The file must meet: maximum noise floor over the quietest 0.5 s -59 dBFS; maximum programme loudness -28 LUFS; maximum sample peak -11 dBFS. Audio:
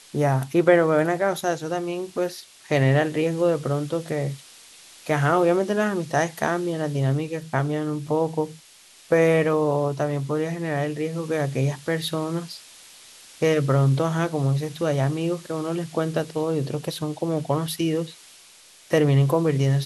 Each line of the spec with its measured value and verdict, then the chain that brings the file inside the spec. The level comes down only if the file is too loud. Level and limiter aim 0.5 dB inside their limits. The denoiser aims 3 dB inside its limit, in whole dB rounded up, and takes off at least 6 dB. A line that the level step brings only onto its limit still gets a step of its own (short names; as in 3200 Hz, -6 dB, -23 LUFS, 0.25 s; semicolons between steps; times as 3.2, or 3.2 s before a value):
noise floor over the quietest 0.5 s -51 dBFS: fail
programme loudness -23.5 LUFS: fail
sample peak -4.5 dBFS: fail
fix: denoiser 6 dB, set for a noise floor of -51 dBFS; gain -5 dB; limiter -11.5 dBFS